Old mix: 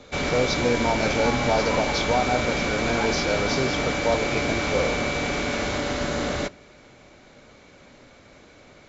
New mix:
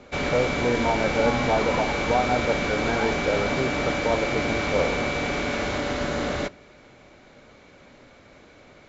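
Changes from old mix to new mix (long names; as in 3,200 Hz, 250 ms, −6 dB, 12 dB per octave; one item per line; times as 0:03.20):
speech: add Butterworth low-pass 2,100 Hz 96 dB per octave
master: add bass and treble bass −1 dB, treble −5 dB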